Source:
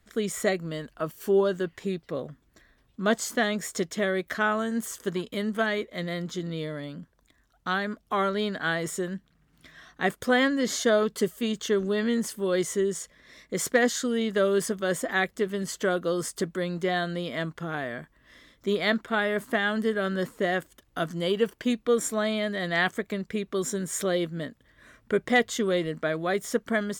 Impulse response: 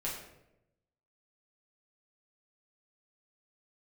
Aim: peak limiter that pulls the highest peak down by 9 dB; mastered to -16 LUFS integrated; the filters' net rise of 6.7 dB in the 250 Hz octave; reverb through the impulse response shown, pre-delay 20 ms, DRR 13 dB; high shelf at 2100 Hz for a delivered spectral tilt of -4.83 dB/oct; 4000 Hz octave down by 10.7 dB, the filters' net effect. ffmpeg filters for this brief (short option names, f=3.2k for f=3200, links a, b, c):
-filter_complex "[0:a]equalizer=f=250:t=o:g=8.5,highshelf=f=2.1k:g=-8.5,equalizer=f=4k:t=o:g=-6,alimiter=limit=-16.5dB:level=0:latency=1,asplit=2[a][b];[1:a]atrim=start_sample=2205,adelay=20[c];[b][c]afir=irnorm=-1:irlink=0,volume=-16dB[d];[a][d]amix=inputs=2:normalize=0,volume=11dB"